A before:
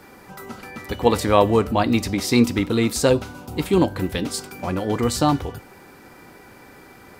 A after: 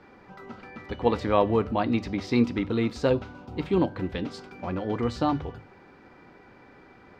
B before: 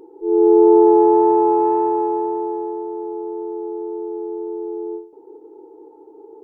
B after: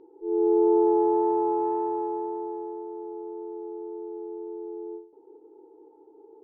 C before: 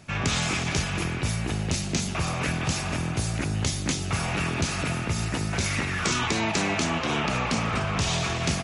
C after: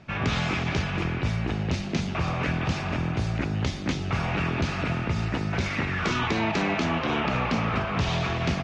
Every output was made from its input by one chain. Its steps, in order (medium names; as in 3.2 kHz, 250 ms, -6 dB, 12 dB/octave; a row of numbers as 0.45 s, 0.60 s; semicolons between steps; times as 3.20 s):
distance through air 210 m; hum notches 50/100/150 Hz; normalise loudness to -27 LUFS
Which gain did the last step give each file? -5.5 dB, -9.0 dB, +1.5 dB